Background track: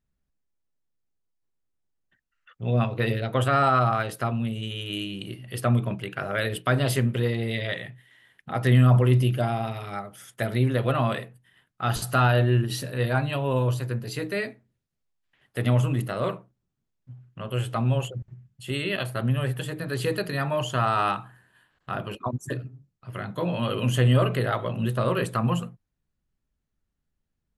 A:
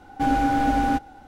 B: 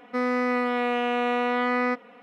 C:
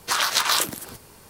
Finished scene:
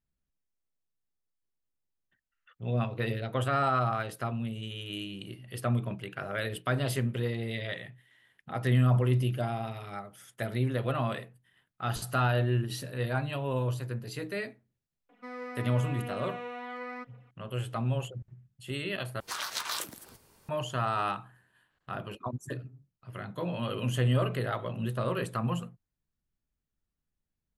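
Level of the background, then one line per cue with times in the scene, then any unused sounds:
background track -6.5 dB
15.09 add B -16 dB + phaser 0.97 Hz, delay 3.1 ms, feedback 45%
19.2 replace with C -13.5 dB
not used: A

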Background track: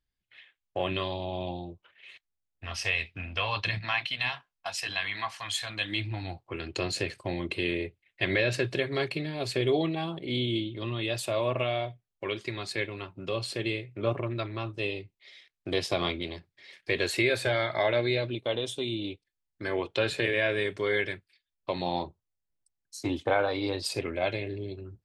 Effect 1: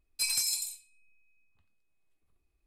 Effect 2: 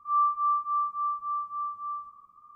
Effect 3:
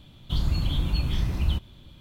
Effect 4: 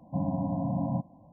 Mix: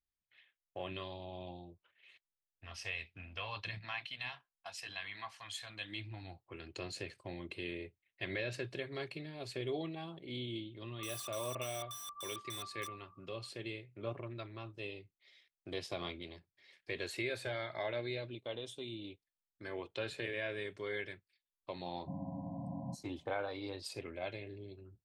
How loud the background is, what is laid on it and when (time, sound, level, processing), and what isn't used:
background track -12.5 dB
10.94 add 2 -12 dB + wrapped overs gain 30 dB
21.94 add 4 -13 dB
not used: 1, 3

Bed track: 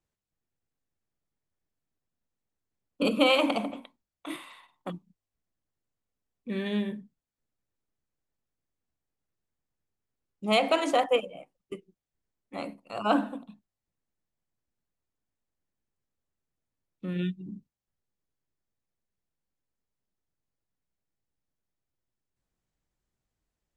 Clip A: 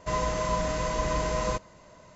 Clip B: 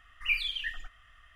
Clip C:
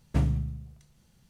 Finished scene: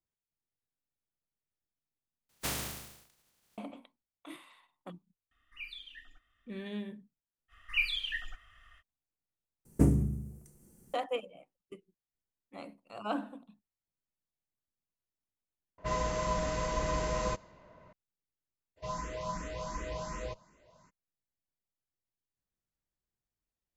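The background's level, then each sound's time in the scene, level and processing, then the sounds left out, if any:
bed track -10 dB
2.29 replace with C -11.5 dB + spectral contrast lowered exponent 0.25
5.31 add B -16.5 dB + small resonant body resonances 280/3600 Hz, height 12 dB, ringing for 25 ms
7.48 add B -1.5 dB, fades 0.05 s
9.65 replace with C -2.5 dB + EQ curve 130 Hz 0 dB, 220 Hz +8 dB, 380 Hz +14 dB, 620 Hz +1 dB, 2200 Hz -5 dB, 3700 Hz -14 dB, 8400 Hz +12 dB
15.78 replace with A -4.5 dB + low-pass opened by the level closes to 2000 Hz, open at -23.5 dBFS
18.76 add A -8 dB, fades 0.02 s + endless phaser +2.7 Hz

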